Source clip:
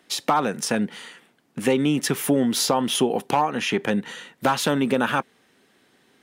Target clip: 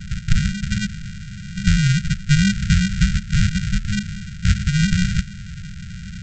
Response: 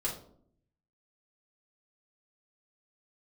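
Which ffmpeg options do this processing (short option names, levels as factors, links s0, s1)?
-af "aeval=exprs='val(0)+0.5*0.0376*sgn(val(0))':c=same,equalizer=f=100:t=o:w=0.67:g=-8,equalizer=f=250:t=o:w=0.67:g=5,equalizer=f=1000:t=o:w=0.67:g=5,aresample=16000,acrusher=samples=37:mix=1:aa=0.000001,aresample=44100,afftfilt=real='re*(1-between(b*sr/4096,210,1300))':imag='im*(1-between(b*sr/4096,210,1300))':win_size=4096:overlap=0.75,volume=1.26"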